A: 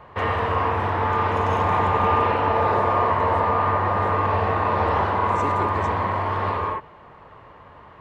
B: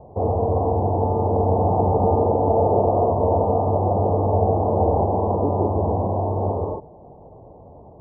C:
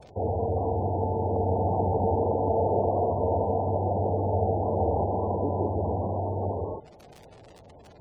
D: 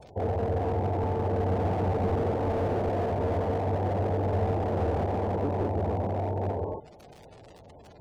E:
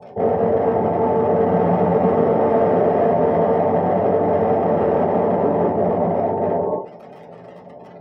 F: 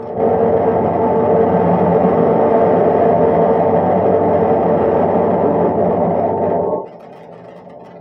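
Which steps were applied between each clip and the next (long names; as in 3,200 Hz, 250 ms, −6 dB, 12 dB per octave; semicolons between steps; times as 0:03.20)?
elliptic low-pass filter 770 Hz, stop band 50 dB; level +6 dB
surface crackle 180 per second −28 dBFS; gate on every frequency bin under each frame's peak −20 dB strong; level −6.5 dB
slew-rate limiting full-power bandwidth 25 Hz
convolution reverb RT60 0.30 s, pre-delay 3 ms, DRR −3.5 dB; level −5 dB
backwards echo 1,194 ms −12.5 dB; level +4 dB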